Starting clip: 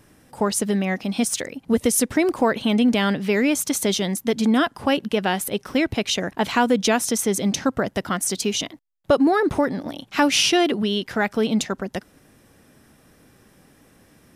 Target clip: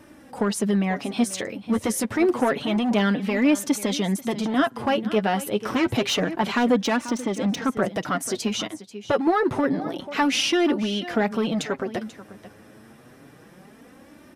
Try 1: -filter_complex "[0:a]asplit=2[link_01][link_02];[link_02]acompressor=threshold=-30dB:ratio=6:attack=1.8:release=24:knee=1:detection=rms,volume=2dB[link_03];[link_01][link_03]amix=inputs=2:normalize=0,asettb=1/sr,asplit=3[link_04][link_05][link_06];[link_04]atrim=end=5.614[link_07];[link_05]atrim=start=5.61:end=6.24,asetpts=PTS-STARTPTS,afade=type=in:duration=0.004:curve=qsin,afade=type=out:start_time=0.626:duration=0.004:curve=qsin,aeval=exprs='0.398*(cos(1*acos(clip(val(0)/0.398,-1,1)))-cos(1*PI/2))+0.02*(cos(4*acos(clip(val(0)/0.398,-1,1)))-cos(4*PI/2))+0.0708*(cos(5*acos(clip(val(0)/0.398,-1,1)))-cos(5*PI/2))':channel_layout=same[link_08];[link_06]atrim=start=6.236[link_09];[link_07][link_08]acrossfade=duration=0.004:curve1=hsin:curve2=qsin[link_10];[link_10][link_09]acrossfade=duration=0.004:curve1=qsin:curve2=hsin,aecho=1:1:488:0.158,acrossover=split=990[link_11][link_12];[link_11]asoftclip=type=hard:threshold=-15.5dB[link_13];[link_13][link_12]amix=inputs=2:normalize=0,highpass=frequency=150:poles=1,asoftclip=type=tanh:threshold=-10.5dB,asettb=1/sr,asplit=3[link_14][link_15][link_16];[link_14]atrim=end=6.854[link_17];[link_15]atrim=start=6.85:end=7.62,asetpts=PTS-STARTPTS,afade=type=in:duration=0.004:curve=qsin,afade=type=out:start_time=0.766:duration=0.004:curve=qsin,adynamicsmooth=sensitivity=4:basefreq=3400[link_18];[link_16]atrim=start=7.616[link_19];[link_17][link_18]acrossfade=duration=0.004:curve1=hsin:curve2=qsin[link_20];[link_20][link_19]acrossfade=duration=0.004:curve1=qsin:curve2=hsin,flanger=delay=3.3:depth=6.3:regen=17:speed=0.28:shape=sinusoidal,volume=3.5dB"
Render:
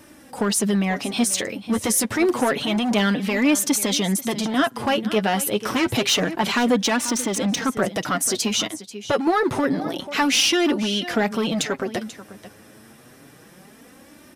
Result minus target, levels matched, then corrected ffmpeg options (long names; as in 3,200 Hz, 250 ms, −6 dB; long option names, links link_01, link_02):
downward compressor: peak gain reduction −7 dB; 8,000 Hz band +7.0 dB
-filter_complex "[0:a]asplit=2[link_01][link_02];[link_02]acompressor=threshold=-38.5dB:ratio=6:attack=1.8:release=24:knee=1:detection=rms,volume=2dB[link_03];[link_01][link_03]amix=inputs=2:normalize=0,asettb=1/sr,asplit=3[link_04][link_05][link_06];[link_04]atrim=end=5.614[link_07];[link_05]atrim=start=5.61:end=6.24,asetpts=PTS-STARTPTS,afade=type=in:duration=0.004:curve=qsin,afade=type=out:start_time=0.626:duration=0.004:curve=qsin,aeval=exprs='0.398*(cos(1*acos(clip(val(0)/0.398,-1,1)))-cos(1*PI/2))+0.02*(cos(4*acos(clip(val(0)/0.398,-1,1)))-cos(4*PI/2))+0.0708*(cos(5*acos(clip(val(0)/0.398,-1,1)))-cos(5*PI/2))':channel_layout=same[link_08];[link_06]atrim=start=6.236[link_09];[link_07][link_08]acrossfade=duration=0.004:curve1=hsin:curve2=qsin[link_10];[link_10][link_09]acrossfade=duration=0.004:curve1=qsin:curve2=hsin,aecho=1:1:488:0.158,acrossover=split=990[link_11][link_12];[link_11]asoftclip=type=hard:threshold=-15.5dB[link_13];[link_13][link_12]amix=inputs=2:normalize=0,highpass=frequency=150:poles=1,highshelf=frequency=3200:gain=-9.5,asoftclip=type=tanh:threshold=-10.5dB,asettb=1/sr,asplit=3[link_14][link_15][link_16];[link_14]atrim=end=6.854[link_17];[link_15]atrim=start=6.85:end=7.62,asetpts=PTS-STARTPTS,afade=type=in:duration=0.004:curve=qsin,afade=type=out:start_time=0.766:duration=0.004:curve=qsin,adynamicsmooth=sensitivity=4:basefreq=3400[link_18];[link_16]atrim=start=7.616[link_19];[link_17][link_18]acrossfade=duration=0.004:curve1=hsin:curve2=qsin[link_20];[link_20][link_19]acrossfade=duration=0.004:curve1=qsin:curve2=hsin,flanger=delay=3.3:depth=6.3:regen=17:speed=0.28:shape=sinusoidal,volume=3.5dB"